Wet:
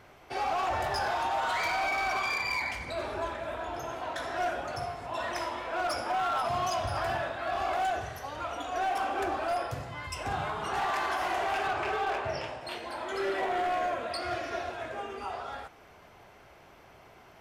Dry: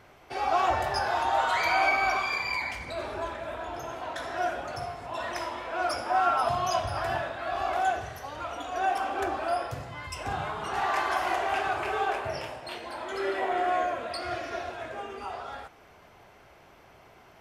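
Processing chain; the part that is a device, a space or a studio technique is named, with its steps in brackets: 11.67–12.61 s: low-pass 6.6 kHz 12 dB/octave; limiter into clipper (peak limiter -20 dBFS, peak gain reduction 7 dB; hard clipper -25.5 dBFS, distortion -16 dB)

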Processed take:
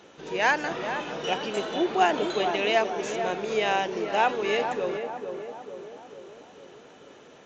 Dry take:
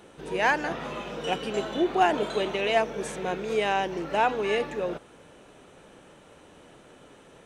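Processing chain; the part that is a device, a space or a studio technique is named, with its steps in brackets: treble shelf 3.3 kHz +5 dB; tape echo 447 ms, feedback 63%, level -5 dB, low-pass 1.1 kHz; Bluetooth headset (high-pass 190 Hz 6 dB/octave; resampled via 16 kHz; SBC 64 kbps 16 kHz)

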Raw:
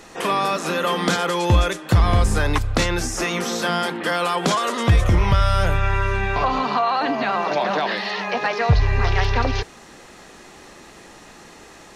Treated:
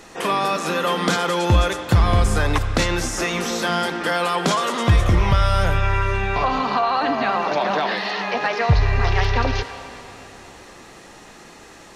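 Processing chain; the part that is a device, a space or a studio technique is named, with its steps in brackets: filtered reverb send (on a send: high-pass 540 Hz 6 dB/octave + low-pass 5.9 kHz 12 dB/octave + reverberation RT60 3.8 s, pre-delay 52 ms, DRR 9 dB)

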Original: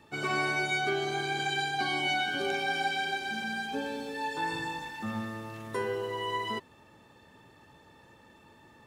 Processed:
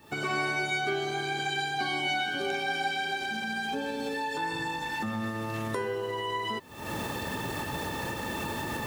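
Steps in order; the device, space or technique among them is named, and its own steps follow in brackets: cheap recorder with automatic gain (white noise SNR 36 dB; recorder AGC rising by 73 dB/s)

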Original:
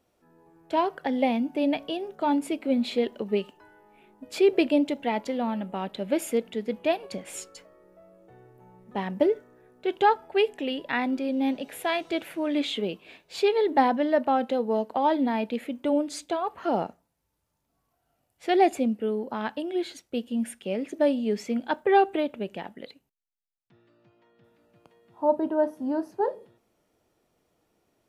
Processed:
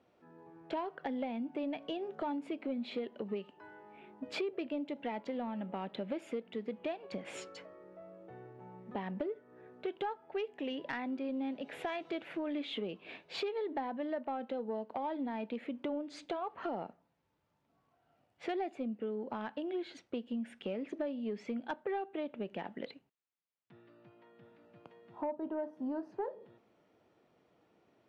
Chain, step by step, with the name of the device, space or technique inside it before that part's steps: AM radio (band-pass 110–3200 Hz; compression 6:1, threshold -37 dBFS, peak gain reduction 21 dB; saturation -27.5 dBFS, distortion -24 dB); trim +2 dB

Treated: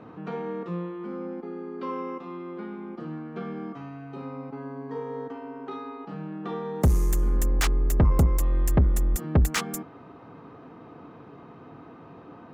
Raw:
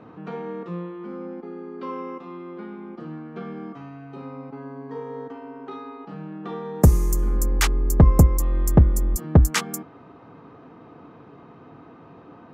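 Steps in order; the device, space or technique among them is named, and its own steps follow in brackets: saturation between pre-emphasis and de-emphasis (treble shelf 3.6 kHz +11.5 dB; saturation -14.5 dBFS, distortion -9 dB; treble shelf 3.6 kHz -11.5 dB)

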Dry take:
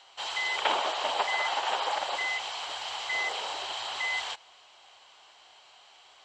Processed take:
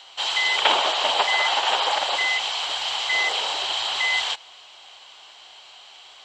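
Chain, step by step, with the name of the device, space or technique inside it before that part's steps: presence and air boost (peaking EQ 3.4 kHz +5.5 dB 0.99 oct; treble shelf 9.2 kHz +5 dB); trim +6 dB

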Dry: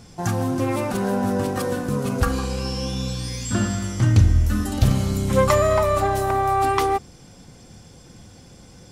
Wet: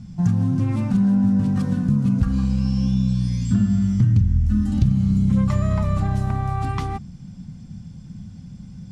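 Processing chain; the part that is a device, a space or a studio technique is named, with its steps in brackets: jukebox (low-pass 7.3 kHz 12 dB/octave; resonant low shelf 280 Hz +13.5 dB, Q 3; compression 4:1, threshold -7 dBFS, peak gain reduction 12 dB); trim -8 dB

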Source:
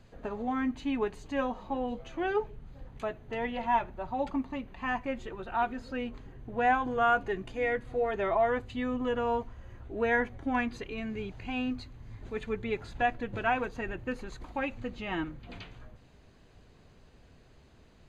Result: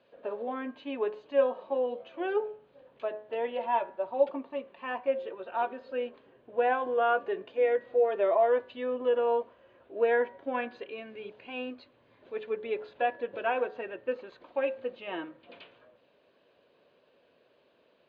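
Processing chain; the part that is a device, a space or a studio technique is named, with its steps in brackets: phone earpiece (cabinet simulation 450–3500 Hz, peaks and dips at 550 Hz +8 dB, 790 Hz -7 dB, 1.3 kHz -5 dB, 2 kHz -8 dB); de-hum 106.3 Hz, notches 19; dynamic bell 470 Hz, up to +5 dB, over -42 dBFS, Q 0.74

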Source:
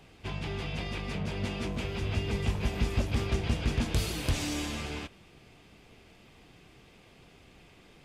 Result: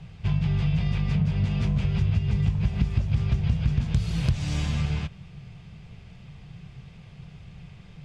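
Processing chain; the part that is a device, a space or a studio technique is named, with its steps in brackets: jukebox (low-pass 6.7 kHz 12 dB/octave; resonant low shelf 210 Hz +10.5 dB, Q 3; compression 5:1, threshold -22 dBFS, peak gain reduction 11.5 dB); trim +2 dB

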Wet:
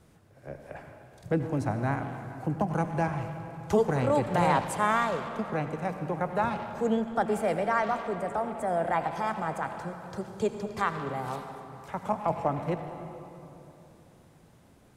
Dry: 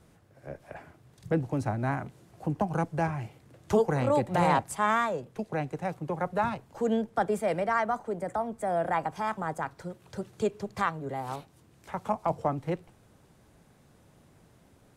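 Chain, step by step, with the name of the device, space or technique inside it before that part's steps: saturated reverb return (on a send at -5 dB: reverberation RT60 2.9 s, pre-delay 72 ms + saturation -27 dBFS, distortion -11 dB)

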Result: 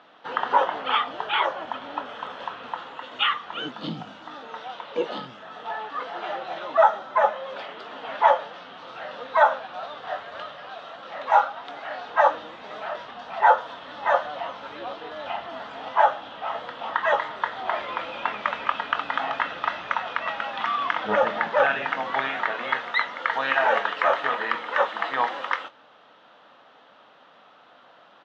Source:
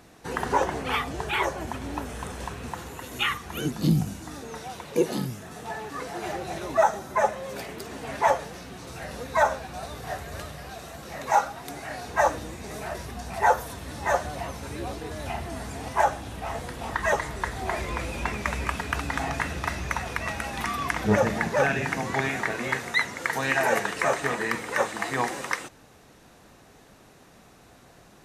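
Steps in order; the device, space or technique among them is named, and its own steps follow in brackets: phone earpiece (cabinet simulation 380–3700 Hz, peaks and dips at 380 Hz -8 dB, 580 Hz +4 dB, 910 Hz +4 dB, 1.3 kHz +8 dB, 2.3 kHz -4 dB, 3.2 kHz +9 dB); doubling 23 ms -12 dB

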